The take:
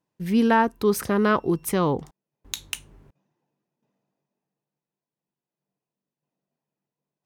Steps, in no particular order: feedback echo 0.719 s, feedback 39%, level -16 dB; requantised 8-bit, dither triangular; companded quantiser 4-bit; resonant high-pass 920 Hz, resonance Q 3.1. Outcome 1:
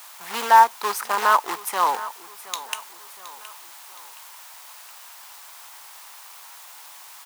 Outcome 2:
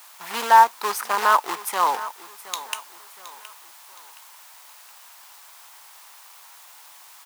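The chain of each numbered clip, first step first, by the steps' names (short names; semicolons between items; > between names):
feedback echo > requantised > companded quantiser > resonant high-pass; feedback echo > companded quantiser > requantised > resonant high-pass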